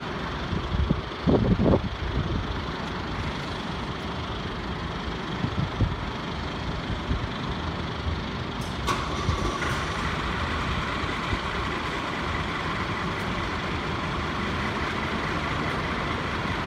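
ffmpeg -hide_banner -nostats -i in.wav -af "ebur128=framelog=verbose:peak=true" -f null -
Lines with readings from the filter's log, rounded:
Integrated loudness:
  I:         -28.2 LUFS
  Threshold: -38.2 LUFS
Loudness range:
  LRA:         3.8 LU
  Threshold: -48.6 LUFS
  LRA low:   -30.4 LUFS
  LRA high:  -26.6 LUFS
True peak:
  Peak:       -8.1 dBFS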